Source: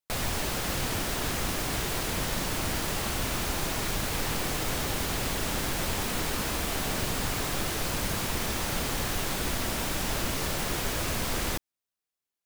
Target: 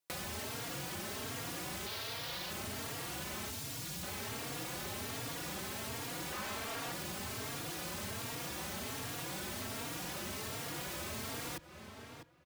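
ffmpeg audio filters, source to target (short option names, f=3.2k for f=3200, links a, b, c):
-filter_complex "[0:a]highpass=f=79:w=0.5412,highpass=f=79:w=1.3066,asplit=2[a][b];[b]adelay=649,lowpass=f=3.2k:p=1,volume=-21dB,asplit=2[c][d];[d]adelay=649,lowpass=f=3.2k:p=1,volume=0.16[e];[a][c][e]amix=inputs=3:normalize=0,asettb=1/sr,asplit=3[f][g][h];[f]atrim=end=3.494[i];[g]atrim=start=3.49:end=4.03,asetpts=PTS-STARTPTS,afade=t=in:d=0.004:c=qsin,afade=t=out:st=0.536:d=0.004:c=qsin,acrossover=split=220|3000[j][k][l];[k]acompressor=threshold=-45dB:ratio=3[m];[j][m][l]amix=inputs=3:normalize=0[n];[h]atrim=start=4.026[o];[i][n]acrossfade=d=0.004:c1=hsin:c2=qsin[p];[p][o]acrossfade=d=0.004:c1=qsin:c2=hsin,asettb=1/sr,asplit=3[q][r][s];[q]atrim=end=6.324[t];[r]atrim=start=6.32:end=6.92,asetpts=PTS-STARTPTS,afade=t=in:d=0.004:c=qsin,afade=t=out:st=0.596:d=0.004:c=qsin,equalizer=f=1.2k:w=0.41:g=7.5[u];[s]atrim=start=6.916[v];[t][u]acrossfade=d=0.004:c1=hsin:c2=qsin[w];[w][v]acrossfade=d=0.004:c1=qsin:c2=hsin,asoftclip=type=hard:threshold=-30.5dB,acompressor=threshold=-44dB:ratio=6,asettb=1/sr,asplit=3[x][y][z];[x]atrim=end=1.864[aa];[y]atrim=start=1.86:end=2.51,asetpts=PTS-STARTPTS,afade=t=in:d=0.004:c=qsin,afade=t=out:st=0.646:d=0.004:c=qsin,equalizer=f=125:t=o:w=1:g=-4,equalizer=f=250:t=o:w=1:g=-9,equalizer=f=4k:t=o:w=1:g=8,equalizer=f=8k:t=o:w=1:g=-7[ab];[z]atrim=start=2.506[ac];[aa][ab]acrossfade=d=0.004:c1=hsin:c2=qsin[ad];[ad][ac]acrossfade=d=0.004:c1=qsin:c2=hsin,asplit=2[ae][af];[af]adelay=3.7,afreqshift=1.3[ag];[ae][ag]amix=inputs=2:normalize=1,volume=6dB"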